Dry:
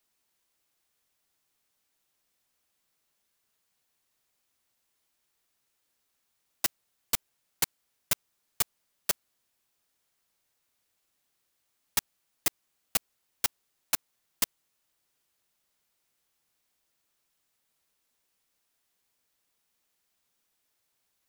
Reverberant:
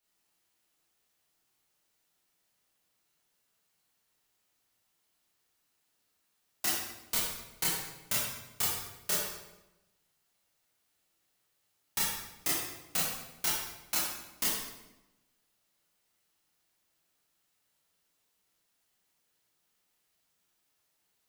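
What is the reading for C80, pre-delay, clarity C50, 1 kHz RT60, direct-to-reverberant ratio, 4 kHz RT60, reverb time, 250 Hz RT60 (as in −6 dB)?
3.0 dB, 16 ms, 0.0 dB, 0.90 s, −7.5 dB, 0.75 s, 0.95 s, 1.2 s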